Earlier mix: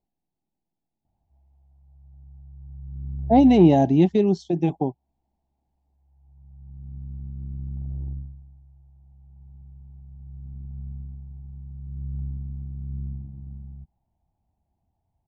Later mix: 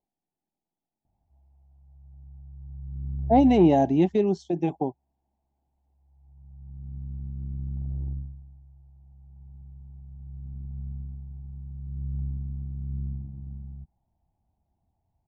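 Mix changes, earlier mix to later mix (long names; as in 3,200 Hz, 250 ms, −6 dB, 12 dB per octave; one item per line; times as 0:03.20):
speech: add low-shelf EQ 200 Hz −10.5 dB
master: add parametric band 4,200 Hz −6 dB 1.2 octaves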